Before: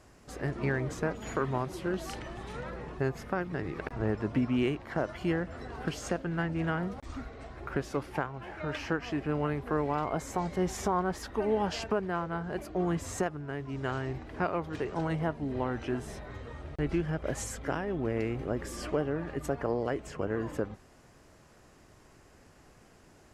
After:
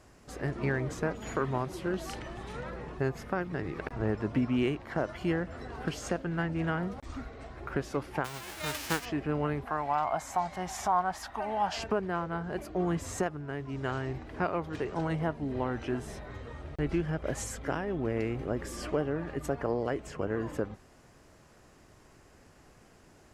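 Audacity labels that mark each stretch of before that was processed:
8.240000	9.040000	formants flattened exponent 0.3
9.650000	11.770000	resonant low shelf 570 Hz -7.5 dB, Q 3

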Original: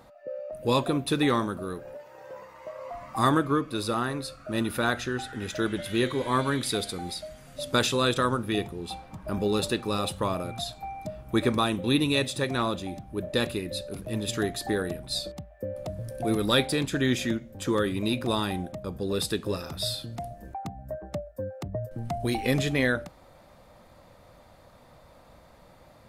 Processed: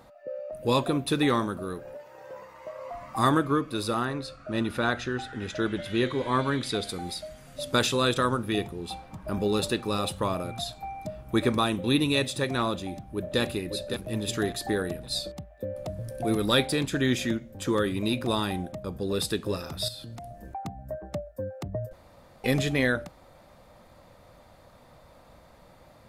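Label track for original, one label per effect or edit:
4.050000	6.850000	distance through air 59 m
12.750000	13.400000	echo throw 560 ms, feedback 30%, level -7 dB
19.880000	20.470000	compression, threshold -37 dBFS
21.930000	22.440000	room tone

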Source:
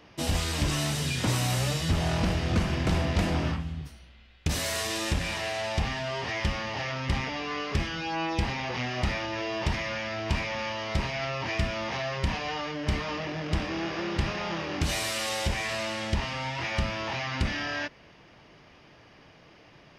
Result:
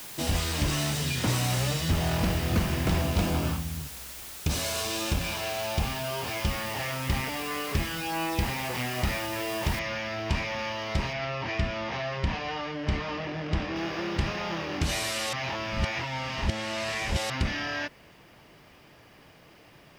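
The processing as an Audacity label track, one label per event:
3.010000	6.510000	band-stop 1.9 kHz, Q 5.2
9.790000	9.790000	noise floor step -42 dB -69 dB
11.130000	13.760000	distance through air 83 m
15.330000	17.300000	reverse

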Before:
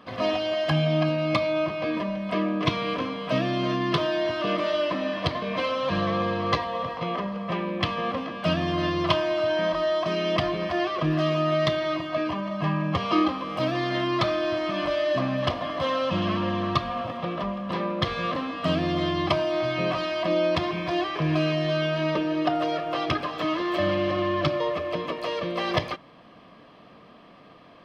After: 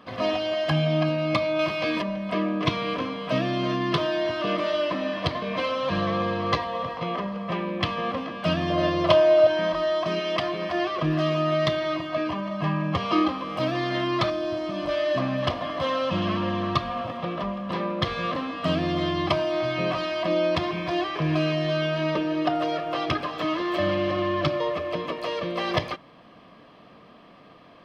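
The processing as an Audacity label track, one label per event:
1.590000	2.020000	treble shelf 2.2 kHz +12 dB
8.700000	9.470000	peaking EQ 580 Hz +12.5 dB 0.42 oct
10.190000	10.730000	high-pass 550 Hz -> 160 Hz 6 dB/octave
14.300000	14.890000	peaking EQ 1.9 kHz -8.5 dB 2 oct

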